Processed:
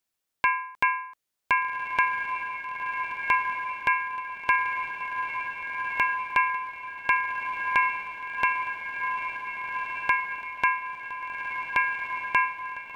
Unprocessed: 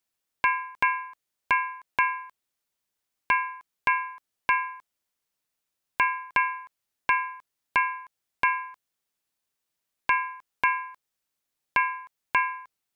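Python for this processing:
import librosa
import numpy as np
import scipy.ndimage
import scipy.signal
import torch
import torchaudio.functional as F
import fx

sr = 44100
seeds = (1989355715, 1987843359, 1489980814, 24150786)

y = fx.echo_diffused(x, sr, ms=1538, feedback_pct=56, wet_db=-4)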